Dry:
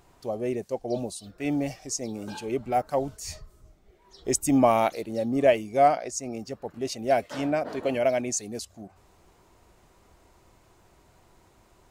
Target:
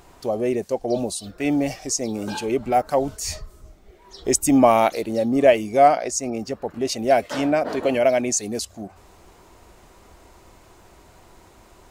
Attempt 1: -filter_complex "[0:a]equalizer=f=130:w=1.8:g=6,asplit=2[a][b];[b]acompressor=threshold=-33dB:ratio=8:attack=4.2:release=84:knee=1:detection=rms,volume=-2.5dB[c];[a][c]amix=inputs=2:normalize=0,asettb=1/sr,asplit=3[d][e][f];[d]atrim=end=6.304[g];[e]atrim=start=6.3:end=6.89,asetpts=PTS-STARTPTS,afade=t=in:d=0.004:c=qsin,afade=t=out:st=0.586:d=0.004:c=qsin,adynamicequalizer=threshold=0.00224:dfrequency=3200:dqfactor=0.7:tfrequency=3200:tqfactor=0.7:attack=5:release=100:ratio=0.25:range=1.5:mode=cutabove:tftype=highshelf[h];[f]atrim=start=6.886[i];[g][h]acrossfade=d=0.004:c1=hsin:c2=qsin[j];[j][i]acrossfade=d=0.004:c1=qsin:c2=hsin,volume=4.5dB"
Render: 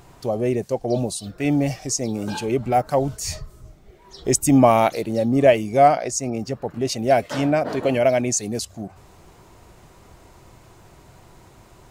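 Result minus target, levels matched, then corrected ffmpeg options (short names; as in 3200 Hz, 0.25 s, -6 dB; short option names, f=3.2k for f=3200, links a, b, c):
125 Hz band +8.0 dB
-filter_complex "[0:a]equalizer=f=130:w=1.8:g=-4.5,asplit=2[a][b];[b]acompressor=threshold=-33dB:ratio=8:attack=4.2:release=84:knee=1:detection=rms,volume=-2.5dB[c];[a][c]amix=inputs=2:normalize=0,asettb=1/sr,asplit=3[d][e][f];[d]atrim=end=6.304[g];[e]atrim=start=6.3:end=6.89,asetpts=PTS-STARTPTS,afade=t=in:d=0.004:c=qsin,afade=t=out:st=0.586:d=0.004:c=qsin,adynamicequalizer=threshold=0.00224:dfrequency=3200:dqfactor=0.7:tfrequency=3200:tqfactor=0.7:attack=5:release=100:ratio=0.25:range=1.5:mode=cutabove:tftype=highshelf[h];[f]atrim=start=6.886[i];[g][h]acrossfade=d=0.004:c1=hsin:c2=qsin[j];[j][i]acrossfade=d=0.004:c1=qsin:c2=hsin,volume=4.5dB"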